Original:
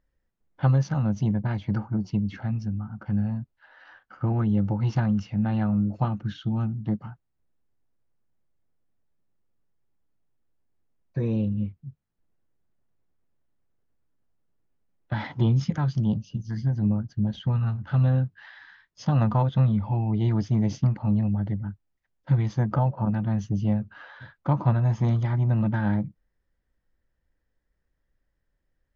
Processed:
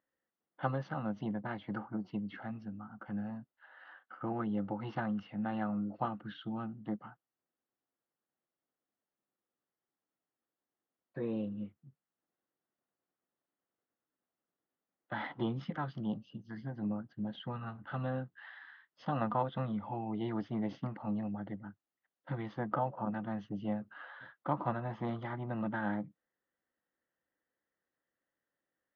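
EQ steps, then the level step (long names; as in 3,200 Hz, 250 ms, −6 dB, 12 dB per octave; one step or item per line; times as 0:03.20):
loudspeaker in its box 380–3,000 Hz, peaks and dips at 420 Hz −5 dB, 600 Hz −4 dB, 930 Hz −5 dB, 1,600 Hz −3 dB, 2,400 Hz −10 dB
0.0 dB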